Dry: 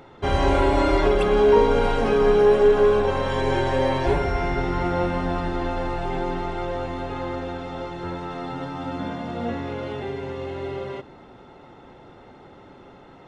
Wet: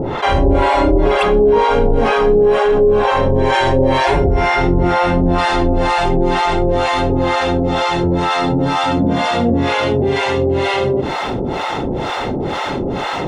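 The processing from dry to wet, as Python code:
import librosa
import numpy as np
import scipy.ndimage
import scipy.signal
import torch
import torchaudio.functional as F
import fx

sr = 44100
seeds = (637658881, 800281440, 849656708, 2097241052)

y = fx.peak_eq(x, sr, hz=1400.0, db=-3.0, octaves=0.57)
y = fx.harmonic_tremolo(y, sr, hz=2.1, depth_pct=100, crossover_hz=630.0)
y = fx.high_shelf(y, sr, hz=3400.0, db=fx.steps((0.0, -8.5), (3.52, -2.0), (5.38, 5.0)))
y = fx.env_flatten(y, sr, amount_pct=70)
y = y * librosa.db_to_amplitude(6.5)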